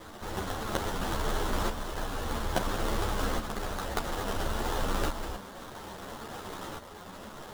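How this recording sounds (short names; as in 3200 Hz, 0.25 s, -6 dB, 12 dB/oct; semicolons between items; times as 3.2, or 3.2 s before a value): a quantiser's noise floor 8-bit, dither triangular; tremolo saw up 0.59 Hz, depth 60%; aliases and images of a low sample rate 2400 Hz, jitter 20%; a shimmering, thickened sound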